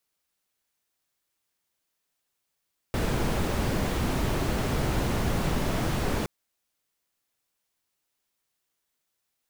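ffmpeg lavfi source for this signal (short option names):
-f lavfi -i "anoisesrc=c=brown:a=0.234:d=3.32:r=44100:seed=1"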